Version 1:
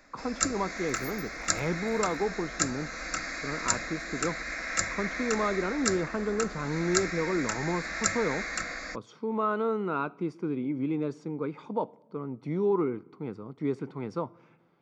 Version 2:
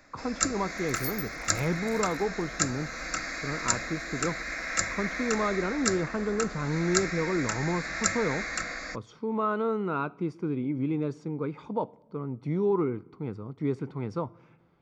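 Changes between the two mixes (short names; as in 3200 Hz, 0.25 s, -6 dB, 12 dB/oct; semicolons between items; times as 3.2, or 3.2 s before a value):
speech: remove HPF 170 Hz; first sound: send on; second sound +11.0 dB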